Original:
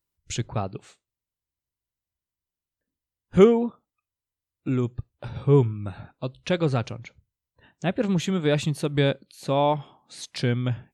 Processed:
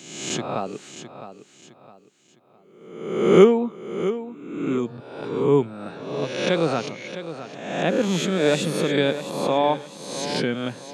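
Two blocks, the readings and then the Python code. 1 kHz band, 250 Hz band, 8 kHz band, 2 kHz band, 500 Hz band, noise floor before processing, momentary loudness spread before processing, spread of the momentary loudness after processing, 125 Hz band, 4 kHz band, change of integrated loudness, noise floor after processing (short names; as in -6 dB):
+3.5 dB, +2.5 dB, +6.5 dB, +5.5 dB, +4.0 dB, under -85 dBFS, 17 LU, 16 LU, -5.0 dB, +5.5 dB, +1.5 dB, -55 dBFS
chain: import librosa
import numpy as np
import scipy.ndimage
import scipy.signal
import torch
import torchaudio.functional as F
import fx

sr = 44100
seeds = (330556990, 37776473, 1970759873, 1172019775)

p1 = fx.spec_swells(x, sr, rise_s=0.97)
p2 = scipy.signal.sosfilt(scipy.signal.butter(4, 180.0, 'highpass', fs=sr, output='sos'), p1)
p3 = p2 + fx.echo_feedback(p2, sr, ms=660, feedback_pct=34, wet_db=-12.0, dry=0)
y = F.gain(torch.from_numpy(p3), 1.0).numpy()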